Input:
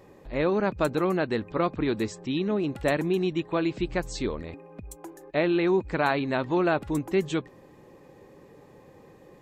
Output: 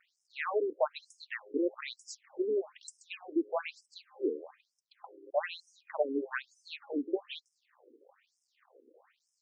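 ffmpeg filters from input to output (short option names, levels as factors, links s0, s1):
-af "aeval=exprs='sgn(val(0))*max(abs(val(0))-0.00188,0)':c=same,afftfilt=real='re*between(b*sr/1024,340*pow(7200/340,0.5+0.5*sin(2*PI*1.1*pts/sr))/1.41,340*pow(7200/340,0.5+0.5*sin(2*PI*1.1*pts/sr))*1.41)':imag='im*between(b*sr/1024,340*pow(7200/340,0.5+0.5*sin(2*PI*1.1*pts/sr))/1.41,340*pow(7200/340,0.5+0.5*sin(2*PI*1.1*pts/sr))*1.41)':win_size=1024:overlap=0.75"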